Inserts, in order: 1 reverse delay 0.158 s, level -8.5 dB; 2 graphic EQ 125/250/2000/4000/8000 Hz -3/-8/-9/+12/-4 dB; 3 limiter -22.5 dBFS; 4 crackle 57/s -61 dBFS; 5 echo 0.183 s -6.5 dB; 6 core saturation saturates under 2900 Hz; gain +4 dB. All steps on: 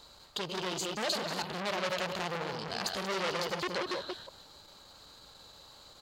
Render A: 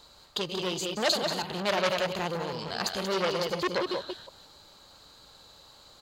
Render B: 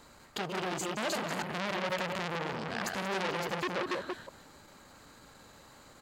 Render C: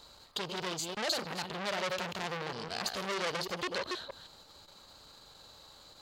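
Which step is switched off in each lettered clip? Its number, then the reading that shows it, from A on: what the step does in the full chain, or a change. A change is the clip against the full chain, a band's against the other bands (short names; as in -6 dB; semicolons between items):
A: 3, crest factor change +2.0 dB; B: 2, 4 kHz band -5.5 dB; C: 5, 8 kHz band +1.5 dB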